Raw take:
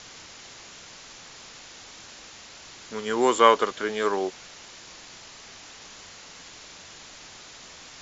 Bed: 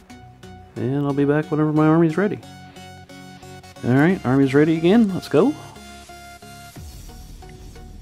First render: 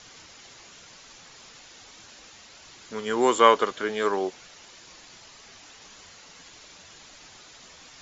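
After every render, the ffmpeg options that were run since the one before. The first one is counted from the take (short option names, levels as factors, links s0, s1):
-af "afftdn=nr=6:nf=-46"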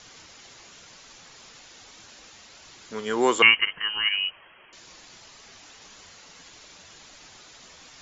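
-filter_complex "[0:a]asettb=1/sr,asplit=3[s0][s1][s2];[s0]atrim=end=3.424[s3];[s1]atrim=start=3.42:end=4.73,asetpts=PTS-STARTPTS,afade=t=in:d=0.004:c=qsin,afade=t=out:st=1.306:d=0.004:c=qsin,lowpass=f=2800:t=q:w=0.5098,lowpass=f=2800:t=q:w=0.6013,lowpass=f=2800:t=q:w=0.9,lowpass=f=2800:t=q:w=2.563,afreqshift=-3300[s4];[s2]atrim=start=4.726[s5];[s3][s4]acrossfade=d=0.004:c1=hsin:c2=qsin[s6];[s6][s5]acrossfade=d=0.004:c1=qsin:c2=hsin"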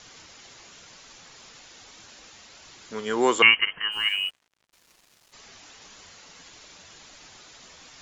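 -filter_complex "[0:a]asplit=3[s0][s1][s2];[s0]afade=t=out:st=3.91:d=0.02[s3];[s1]aeval=exprs='sgn(val(0))*max(abs(val(0))-0.00473,0)':c=same,afade=t=in:st=3.91:d=0.02,afade=t=out:st=5.32:d=0.02[s4];[s2]afade=t=in:st=5.32:d=0.02[s5];[s3][s4][s5]amix=inputs=3:normalize=0"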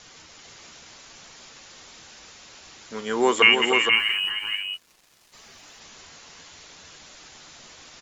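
-filter_complex "[0:a]asplit=2[s0][s1];[s1]adelay=13,volume=0.237[s2];[s0][s2]amix=inputs=2:normalize=0,asplit=2[s3][s4];[s4]aecho=0:1:306|469:0.447|0.562[s5];[s3][s5]amix=inputs=2:normalize=0"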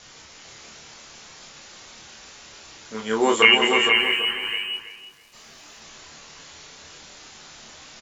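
-filter_complex "[0:a]asplit=2[s0][s1];[s1]adelay=27,volume=0.75[s2];[s0][s2]amix=inputs=2:normalize=0,asplit=2[s3][s4];[s4]adelay=328,lowpass=f=1700:p=1,volume=0.376,asplit=2[s5][s6];[s6]adelay=328,lowpass=f=1700:p=1,volume=0.31,asplit=2[s7][s8];[s8]adelay=328,lowpass=f=1700:p=1,volume=0.31,asplit=2[s9][s10];[s10]adelay=328,lowpass=f=1700:p=1,volume=0.31[s11];[s3][s5][s7][s9][s11]amix=inputs=5:normalize=0"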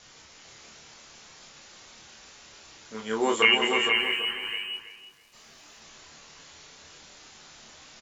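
-af "volume=0.531"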